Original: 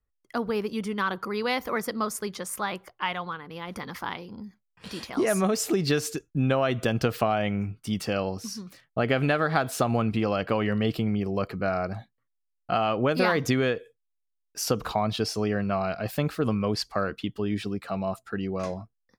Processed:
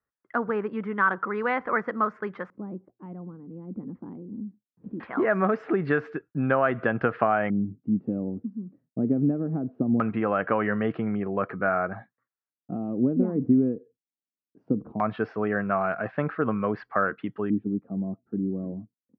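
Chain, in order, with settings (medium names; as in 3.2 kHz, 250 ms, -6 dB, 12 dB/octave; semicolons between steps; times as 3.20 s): band-pass 150–2500 Hz; LFO low-pass square 0.2 Hz 270–1600 Hz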